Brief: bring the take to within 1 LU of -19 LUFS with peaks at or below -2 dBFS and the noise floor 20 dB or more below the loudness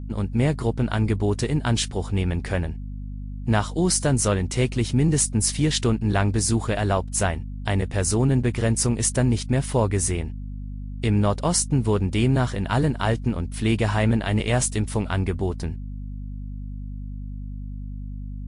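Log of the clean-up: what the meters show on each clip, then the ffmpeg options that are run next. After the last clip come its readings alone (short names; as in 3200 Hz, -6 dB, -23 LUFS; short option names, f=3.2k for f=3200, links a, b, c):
hum 50 Hz; harmonics up to 250 Hz; hum level -30 dBFS; loudness -23.0 LUFS; peak -8.0 dBFS; loudness target -19.0 LUFS
-> -af "bandreject=f=50:t=h:w=6,bandreject=f=100:t=h:w=6,bandreject=f=150:t=h:w=6,bandreject=f=200:t=h:w=6,bandreject=f=250:t=h:w=6"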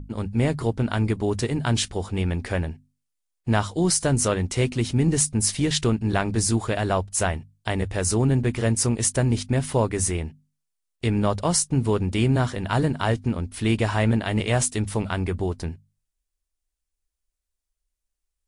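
hum none; loudness -23.5 LUFS; peak -8.5 dBFS; loudness target -19.0 LUFS
-> -af "volume=4.5dB"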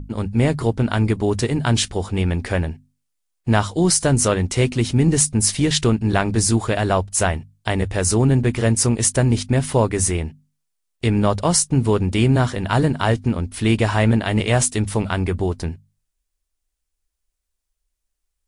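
loudness -19.0 LUFS; peak -4.0 dBFS; noise floor -78 dBFS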